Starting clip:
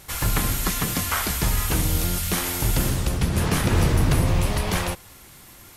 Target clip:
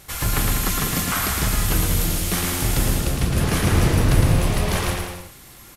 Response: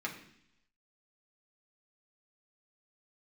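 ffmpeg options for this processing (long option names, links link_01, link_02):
-af "bandreject=frequency=930:width=24,aecho=1:1:110|198|268.4|324.7|369.8:0.631|0.398|0.251|0.158|0.1"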